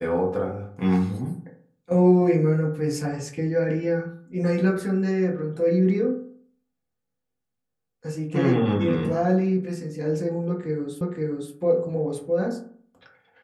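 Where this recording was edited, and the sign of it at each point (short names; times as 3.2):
11.01 repeat of the last 0.52 s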